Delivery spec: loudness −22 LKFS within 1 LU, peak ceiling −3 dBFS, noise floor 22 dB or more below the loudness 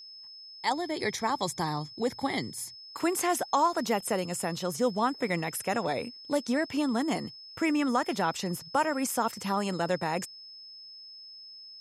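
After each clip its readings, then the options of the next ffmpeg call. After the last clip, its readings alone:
interfering tone 5,200 Hz; level of the tone −45 dBFS; integrated loudness −30.0 LKFS; sample peak −14.0 dBFS; target loudness −22.0 LKFS
→ -af "bandreject=frequency=5200:width=30"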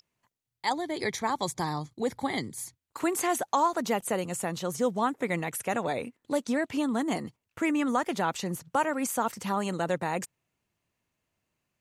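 interfering tone none found; integrated loudness −30.0 LKFS; sample peak −14.5 dBFS; target loudness −22.0 LKFS
→ -af "volume=8dB"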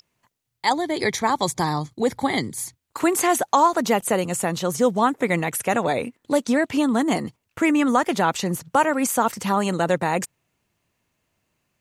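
integrated loudness −22.0 LKFS; sample peak −6.5 dBFS; background noise floor −77 dBFS

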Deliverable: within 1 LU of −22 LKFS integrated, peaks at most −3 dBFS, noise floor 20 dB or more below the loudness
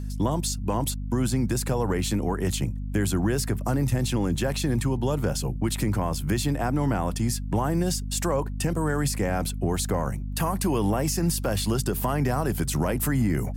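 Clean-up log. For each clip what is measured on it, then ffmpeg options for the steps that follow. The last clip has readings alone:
mains hum 50 Hz; hum harmonics up to 250 Hz; level of the hum −29 dBFS; integrated loudness −26.0 LKFS; sample peak −13.0 dBFS; target loudness −22.0 LKFS
→ -af "bandreject=frequency=50:width_type=h:width=6,bandreject=frequency=100:width_type=h:width=6,bandreject=frequency=150:width_type=h:width=6,bandreject=frequency=200:width_type=h:width=6,bandreject=frequency=250:width_type=h:width=6"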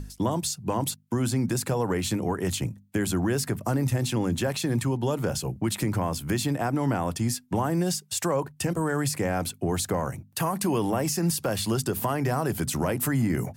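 mains hum none found; integrated loudness −27.0 LKFS; sample peak −13.5 dBFS; target loudness −22.0 LKFS
→ -af "volume=5dB"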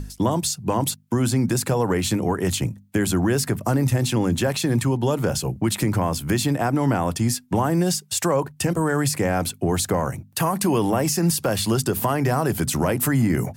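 integrated loudness −22.0 LKFS; sample peak −8.5 dBFS; background noise floor −49 dBFS

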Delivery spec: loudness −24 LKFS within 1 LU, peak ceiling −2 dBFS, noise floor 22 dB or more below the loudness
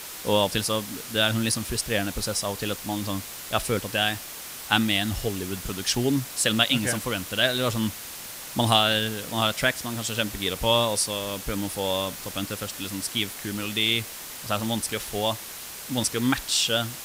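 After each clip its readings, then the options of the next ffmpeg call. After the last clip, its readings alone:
background noise floor −39 dBFS; target noise floor −48 dBFS; integrated loudness −25.5 LKFS; sample peak −4.0 dBFS; target loudness −24.0 LKFS
→ -af "afftdn=noise_reduction=9:noise_floor=-39"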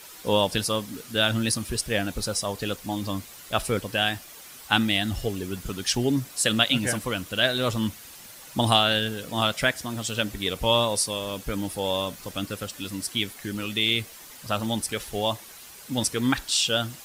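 background noise floor −45 dBFS; target noise floor −48 dBFS
→ -af "afftdn=noise_reduction=6:noise_floor=-45"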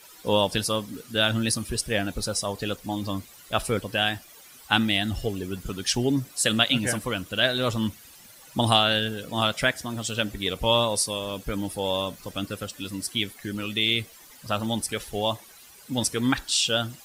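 background noise floor −50 dBFS; integrated loudness −25.5 LKFS; sample peak −4.0 dBFS; target loudness −24.0 LKFS
→ -af "volume=1.5dB"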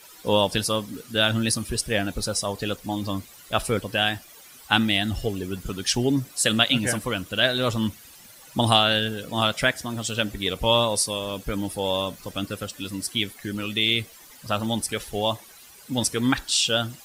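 integrated loudness −24.0 LKFS; sample peak −2.5 dBFS; background noise floor −48 dBFS

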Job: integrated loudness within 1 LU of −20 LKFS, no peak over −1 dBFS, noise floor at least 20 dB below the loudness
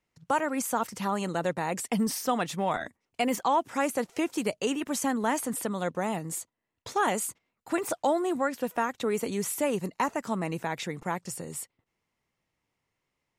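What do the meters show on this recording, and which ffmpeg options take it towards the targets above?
integrated loudness −30.0 LKFS; sample peak −14.5 dBFS; target loudness −20.0 LKFS
→ -af "volume=10dB"

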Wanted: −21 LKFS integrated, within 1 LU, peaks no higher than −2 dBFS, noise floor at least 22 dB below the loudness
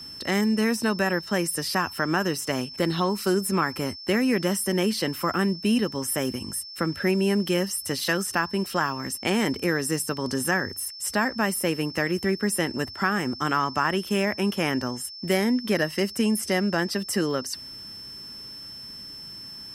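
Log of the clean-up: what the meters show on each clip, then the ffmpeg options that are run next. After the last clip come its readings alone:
interfering tone 5,300 Hz; level of the tone −38 dBFS; integrated loudness −25.5 LKFS; sample peak −8.5 dBFS; target loudness −21.0 LKFS
→ -af "bandreject=frequency=5300:width=30"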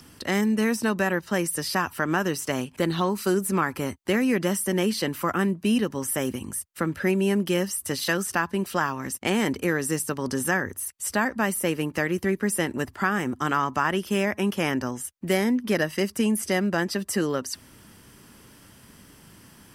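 interfering tone none found; integrated loudness −25.5 LKFS; sample peak −9.0 dBFS; target loudness −21.0 LKFS
→ -af "volume=4.5dB"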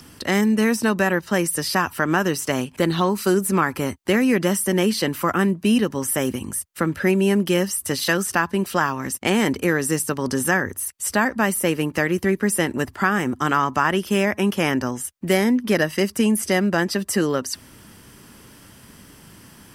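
integrated loudness −21.0 LKFS; sample peak −4.5 dBFS; background noise floor −48 dBFS

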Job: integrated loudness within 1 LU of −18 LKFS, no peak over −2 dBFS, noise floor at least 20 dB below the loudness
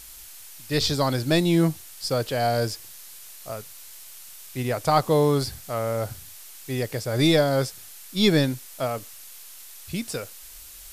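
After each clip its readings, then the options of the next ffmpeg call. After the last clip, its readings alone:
background noise floor −44 dBFS; target noise floor −45 dBFS; integrated loudness −24.5 LKFS; sample peak −7.0 dBFS; target loudness −18.0 LKFS
→ -af "afftdn=noise_reduction=6:noise_floor=-44"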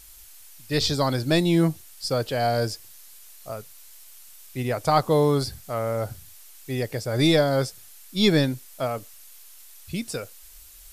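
background noise floor −47 dBFS; integrated loudness −24.5 LKFS; sample peak −7.0 dBFS; target loudness −18.0 LKFS
→ -af "volume=6.5dB,alimiter=limit=-2dB:level=0:latency=1"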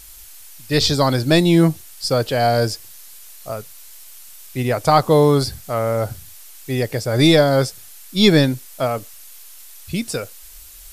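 integrated loudness −18.0 LKFS; sample peak −2.0 dBFS; background noise floor −41 dBFS

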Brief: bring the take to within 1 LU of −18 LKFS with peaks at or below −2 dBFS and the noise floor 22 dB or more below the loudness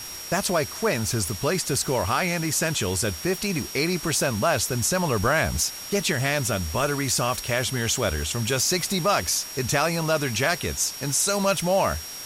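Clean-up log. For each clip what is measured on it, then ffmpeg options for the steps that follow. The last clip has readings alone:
interfering tone 5,600 Hz; level of the tone −37 dBFS; background noise floor −37 dBFS; target noise floor −46 dBFS; integrated loudness −23.5 LKFS; sample peak −9.0 dBFS; target loudness −18.0 LKFS
→ -af "bandreject=frequency=5600:width=30"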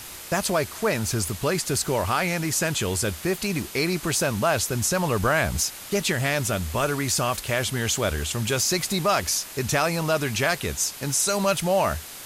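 interfering tone none found; background noise floor −40 dBFS; target noise floor −46 dBFS
→ -af "afftdn=noise_reduction=6:noise_floor=-40"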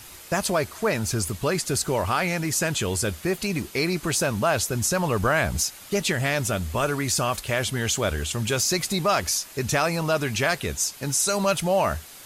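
background noise floor −44 dBFS; target noise floor −46 dBFS
→ -af "afftdn=noise_reduction=6:noise_floor=-44"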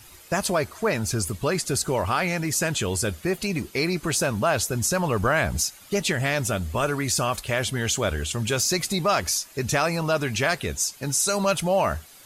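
background noise floor −49 dBFS; integrated loudness −24.5 LKFS; sample peak −9.5 dBFS; target loudness −18.0 LKFS
→ -af "volume=6.5dB"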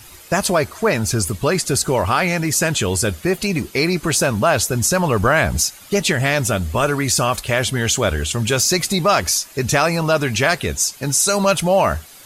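integrated loudness −18.0 LKFS; sample peak −3.0 dBFS; background noise floor −42 dBFS

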